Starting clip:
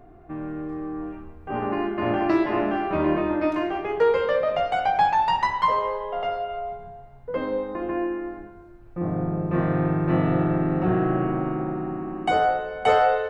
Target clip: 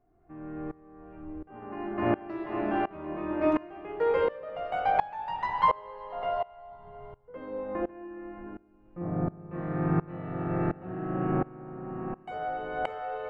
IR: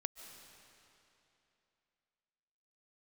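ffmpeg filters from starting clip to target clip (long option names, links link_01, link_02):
-filter_complex "[0:a]asplit=2[link_01][link_02];[1:a]atrim=start_sample=2205,lowpass=3200[link_03];[link_02][link_03]afir=irnorm=-1:irlink=0,volume=6.5dB[link_04];[link_01][link_04]amix=inputs=2:normalize=0,aeval=exprs='val(0)*pow(10,-23*if(lt(mod(-1.4*n/s,1),2*abs(-1.4)/1000),1-mod(-1.4*n/s,1)/(2*abs(-1.4)/1000),(mod(-1.4*n/s,1)-2*abs(-1.4)/1000)/(1-2*abs(-1.4)/1000))/20)':channel_layout=same,volume=-8dB"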